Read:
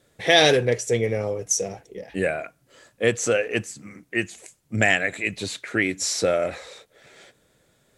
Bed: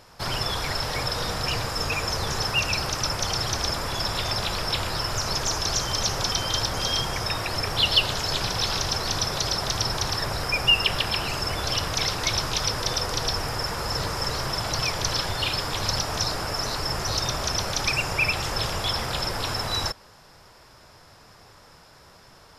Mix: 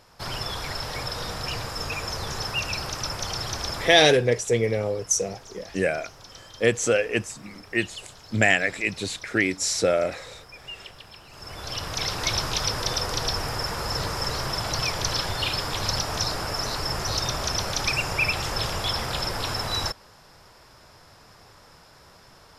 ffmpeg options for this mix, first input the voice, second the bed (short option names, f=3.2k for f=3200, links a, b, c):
-filter_complex "[0:a]adelay=3600,volume=0dB[a];[1:a]volume=16dB,afade=t=out:st=3.81:d=0.26:silence=0.149624,afade=t=in:st=11.3:d=0.99:silence=0.1[b];[a][b]amix=inputs=2:normalize=0"